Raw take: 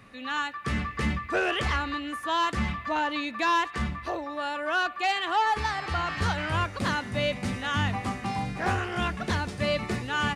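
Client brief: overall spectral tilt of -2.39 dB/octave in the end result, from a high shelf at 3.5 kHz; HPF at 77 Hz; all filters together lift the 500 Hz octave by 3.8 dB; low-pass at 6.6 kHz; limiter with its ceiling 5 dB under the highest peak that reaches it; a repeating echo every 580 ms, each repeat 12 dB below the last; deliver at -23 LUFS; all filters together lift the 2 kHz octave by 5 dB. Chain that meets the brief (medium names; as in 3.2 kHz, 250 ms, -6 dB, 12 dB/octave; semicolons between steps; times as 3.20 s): high-pass 77 Hz; low-pass 6.6 kHz; peaking EQ 500 Hz +4.5 dB; peaking EQ 2 kHz +5.5 dB; treble shelf 3.5 kHz +3 dB; peak limiter -16.5 dBFS; feedback delay 580 ms, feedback 25%, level -12 dB; trim +3.5 dB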